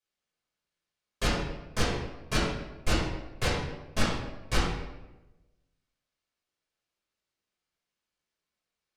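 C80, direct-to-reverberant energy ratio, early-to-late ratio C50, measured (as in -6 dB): 3.5 dB, -8.5 dB, 1.0 dB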